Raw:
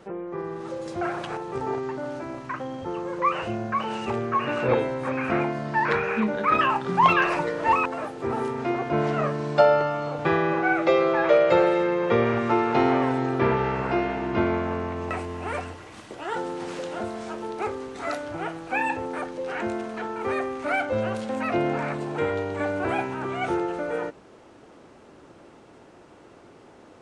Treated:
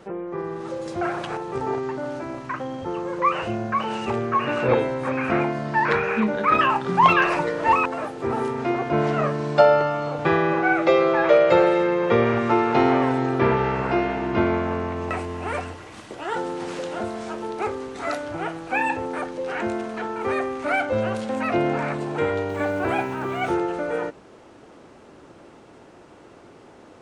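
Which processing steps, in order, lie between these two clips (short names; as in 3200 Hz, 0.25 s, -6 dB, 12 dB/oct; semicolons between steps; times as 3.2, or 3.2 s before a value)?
22.49–23.51 requantised 10-bit, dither none; gain +2.5 dB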